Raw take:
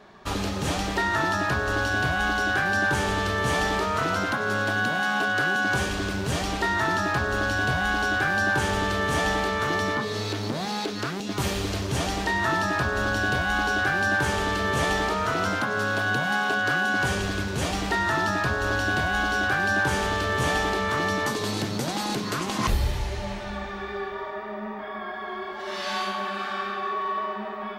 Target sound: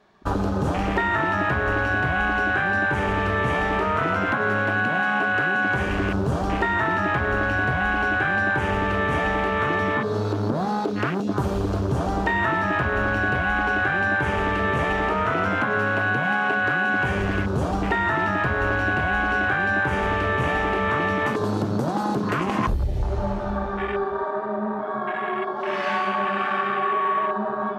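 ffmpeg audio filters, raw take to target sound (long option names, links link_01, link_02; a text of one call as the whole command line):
ffmpeg -i in.wav -af "acompressor=threshold=-26dB:ratio=16,afwtdn=0.02,volume=8dB" out.wav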